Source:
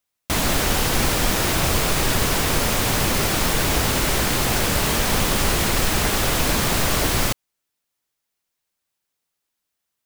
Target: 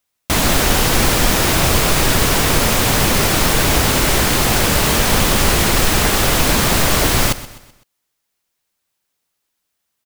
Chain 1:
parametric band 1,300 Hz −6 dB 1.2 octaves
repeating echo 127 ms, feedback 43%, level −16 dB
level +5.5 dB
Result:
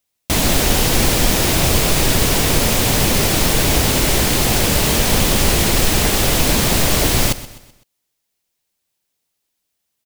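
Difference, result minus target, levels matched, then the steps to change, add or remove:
1,000 Hz band −3.0 dB
remove: parametric band 1,300 Hz −6 dB 1.2 octaves

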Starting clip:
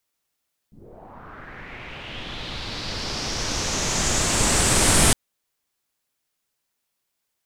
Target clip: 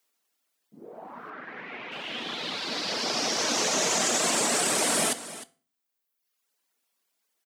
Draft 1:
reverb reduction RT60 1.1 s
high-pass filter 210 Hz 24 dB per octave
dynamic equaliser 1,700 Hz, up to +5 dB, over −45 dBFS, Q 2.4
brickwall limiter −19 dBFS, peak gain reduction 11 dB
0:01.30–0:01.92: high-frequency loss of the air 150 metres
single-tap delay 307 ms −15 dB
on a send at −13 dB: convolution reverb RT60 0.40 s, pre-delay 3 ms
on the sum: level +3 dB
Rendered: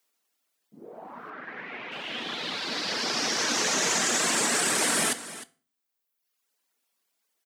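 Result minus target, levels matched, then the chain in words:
500 Hz band −2.5 dB
reverb reduction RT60 1.1 s
high-pass filter 210 Hz 24 dB per octave
dynamic equaliser 630 Hz, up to +5 dB, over −45 dBFS, Q 2.4
brickwall limiter −19 dBFS, peak gain reduction 11.5 dB
0:01.30–0:01.92: high-frequency loss of the air 150 metres
single-tap delay 307 ms −15 dB
on a send at −13 dB: convolution reverb RT60 0.40 s, pre-delay 3 ms
on the sum: level +3 dB

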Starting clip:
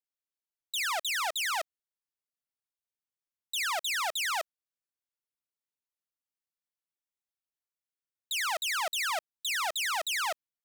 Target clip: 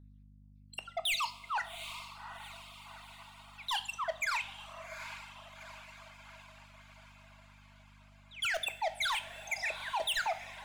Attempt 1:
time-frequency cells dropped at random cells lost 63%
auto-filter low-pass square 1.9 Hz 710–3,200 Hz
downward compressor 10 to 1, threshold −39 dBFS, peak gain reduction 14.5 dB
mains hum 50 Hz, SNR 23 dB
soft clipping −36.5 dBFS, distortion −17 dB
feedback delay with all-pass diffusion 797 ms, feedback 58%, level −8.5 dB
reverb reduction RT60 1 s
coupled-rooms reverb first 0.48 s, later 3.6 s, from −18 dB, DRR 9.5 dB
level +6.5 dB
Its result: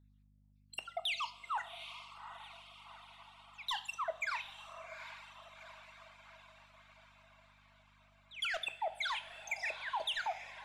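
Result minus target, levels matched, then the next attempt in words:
downward compressor: peak gain reduction +14.5 dB
time-frequency cells dropped at random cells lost 63%
auto-filter low-pass square 1.9 Hz 710–3,200 Hz
mains hum 50 Hz, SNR 23 dB
soft clipping −36.5 dBFS, distortion −6 dB
feedback delay with all-pass diffusion 797 ms, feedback 58%, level −8.5 dB
reverb reduction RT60 1 s
coupled-rooms reverb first 0.48 s, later 3.6 s, from −18 dB, DRR 9.5 dB
level +6.5 dB

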